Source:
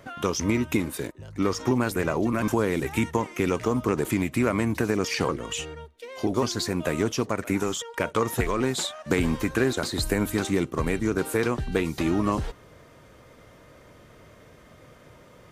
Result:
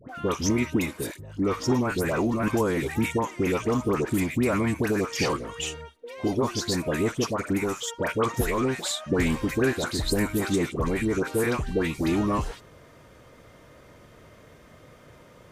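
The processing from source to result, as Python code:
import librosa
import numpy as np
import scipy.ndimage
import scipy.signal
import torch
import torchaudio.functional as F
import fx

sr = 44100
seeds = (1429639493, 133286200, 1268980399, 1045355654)

y = fx.dispersion(x, sr, late='highs', ms=93.0, hz=1200.0)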